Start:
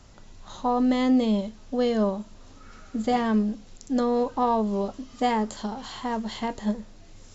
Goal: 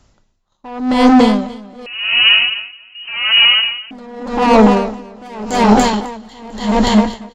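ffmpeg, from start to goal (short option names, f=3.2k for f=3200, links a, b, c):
-filter_complex "[0:a]agate=range=-23dB:threshold=-37dB:ratio=16:detection=peak,dynaudnorm=f=410:g=5:m=3.5dB,asoftclip=type=tanh:threshold=-23dB,aecho=1:1:290|551|785.9|997.3|1188:0.631|0.398|0.251|0.158|0.1,asettb=1/sr,asplit=3[a][b][c];[a]atrim=end=1.864[d];[b]atrim=start=1.86:end=3.91,asetpts=PTS-STARTPTS,afade=t=in:d=0.004:c=qsin,afade=t=out:st=2.046:d=0.004:c=qsin,lowpass=f=2.6k:t=q:w=0.5098,lowpass=f=2.6k:t=q:w=0.6013,lowpass=f=2.6k:t=q:w=0.9,lowpass=f=2.6k:t=q:w=2.563,afreqshift=-3100[e];[c]atrim=start=3.906[f];[d][e]acrossfade=d=0.004:c1=hsin:c2=qsin[g];[g][f]acrossfade=d=0.004:c1=qsin:c2=hsin,alimiter=level_in=22dB:limit=-1dB:release=50:level=0:latency=1,aeval=exprs='val(0)*pow(10,-28*(0.5-0.5*cos(2*PI*0.87*n/s))/20)':c=same"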